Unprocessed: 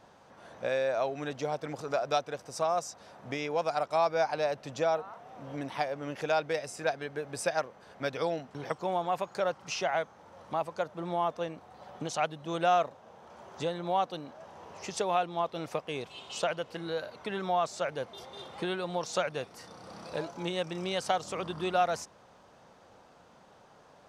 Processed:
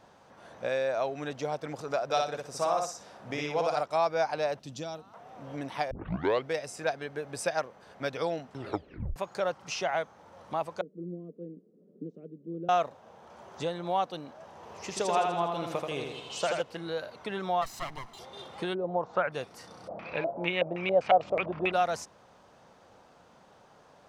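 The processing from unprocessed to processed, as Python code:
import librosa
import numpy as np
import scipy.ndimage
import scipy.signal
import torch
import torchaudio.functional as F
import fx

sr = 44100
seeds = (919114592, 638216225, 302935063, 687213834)

y = fx.echo_feedback(x, sr, ms=60, feedback_pct=24, wet_db=-3.0, at=(2.04, 3.81))
y = fx.band_shelf(y, sr, hz=1000.0, db=-12.0, octaves=2.8, at=(4.59, 5.14))
y = fx.ellip_bandpass(y, sr, low_hz=170.0, high_hz=440.0, order=3, stop_db=40, at=(10.81, 12.69))
y = fx.echo_feedback(y, sr, ms=82, feedback_pct=55, wet_db=-4, at=(14.55, 16.62))
y = fx.lower_of_two(y, sr, delay_ms=1.0, at=(17.61, 18.18), fade=0.02)
y = fx.lowpass_res(y, sr, hz=fx.line((18.73, 410.0), (19.31, 1900.0)), q=1.7, at=(18.73, 19.31), fade=0.02)
y = fx.filter_lfo_lowpass(y, sr, shape='square', hz=fx.line((19.87, 1.6), (21.72, 8.7)), low_hz=640.0, high_hz=2400.0, q=6.4, at=(19.87, 21.72), fade=0.02)
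y = fx.edit(y, sr, fx.tape_start(start_s=5.91, length_s=0.58),
    fx.tape_stop(start_s=8.54, length_s=0.62), tone=tone)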